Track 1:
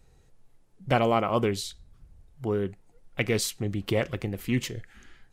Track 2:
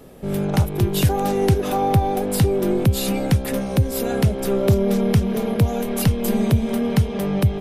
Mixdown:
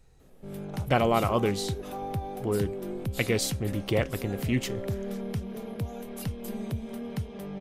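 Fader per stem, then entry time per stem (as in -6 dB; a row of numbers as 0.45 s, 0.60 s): -0.5 dB, -15.5 dB; 0.00 s, 0.20 s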